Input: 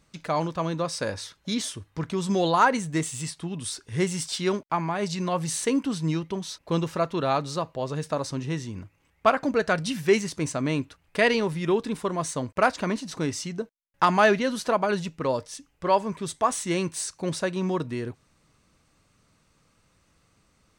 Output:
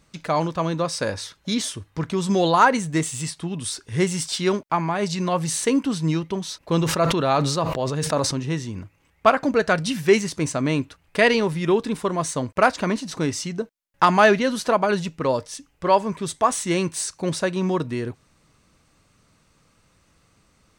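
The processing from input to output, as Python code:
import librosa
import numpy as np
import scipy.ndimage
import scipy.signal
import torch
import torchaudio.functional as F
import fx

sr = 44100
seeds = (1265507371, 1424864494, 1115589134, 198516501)

y = fx.sustainer(x, sr, db_per_s=37.0, at=(6.6, 8.34))
y = F.gain(torch.from_numpy(y), 4.0).numpy()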